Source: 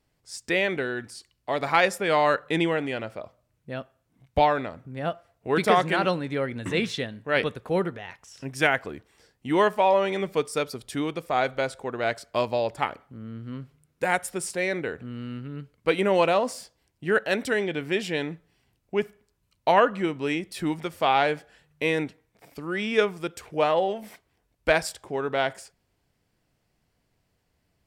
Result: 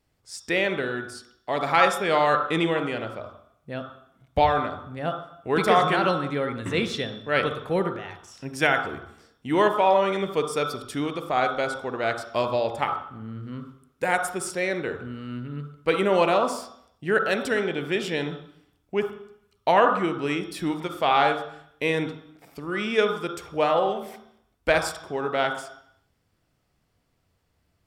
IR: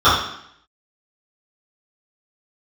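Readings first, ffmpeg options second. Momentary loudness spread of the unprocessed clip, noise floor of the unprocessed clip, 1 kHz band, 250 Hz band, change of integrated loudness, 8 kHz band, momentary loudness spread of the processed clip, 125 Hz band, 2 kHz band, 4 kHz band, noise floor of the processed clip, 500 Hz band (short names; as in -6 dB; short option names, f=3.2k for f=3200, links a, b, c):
16 LU, -73 dBFS, +2.0 dB, +0.5 dB, +1.0 dB, 0.0 dB, 17 LU, +1.0 dB, +0.5 dB, +1.0 dB, -71 dBFS, +0.5 dB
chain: -filter_complex "[0:a]asplit=2[a][b];[1:a]atrim=start_sample=2205,adelay=37[c];[b][c]afir=irnorm=-1:irlink=0,volume=-32dB[d];[a][d]amix=inputs=2:normalize=0"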